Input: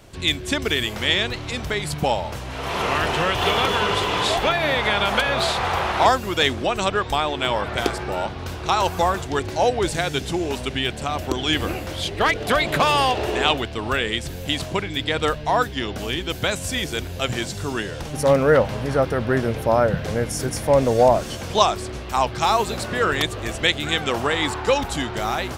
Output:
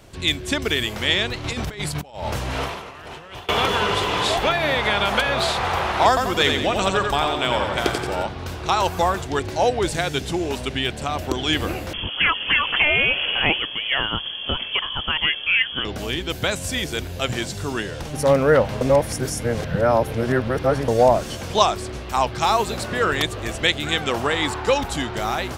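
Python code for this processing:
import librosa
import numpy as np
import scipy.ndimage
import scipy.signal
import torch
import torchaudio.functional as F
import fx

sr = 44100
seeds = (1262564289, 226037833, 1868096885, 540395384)

y = fx.over_compress(x, sr, threshold_db=-29.0, ratio=-0.5, at=(1.44, 3.49))
y = fx.echo_feedback(y, sr, ms=88, feedback_pct=47, wet_db=-4.5, at=(6.08, 8.23))
y = fx.freq_invert(y, sr, carrier_hz=3300, at=(11.93, 15.85))
y = fx.edit(y, sr, fx.reverse_span(start_s=18.81, length_s=2.07), tone=tone)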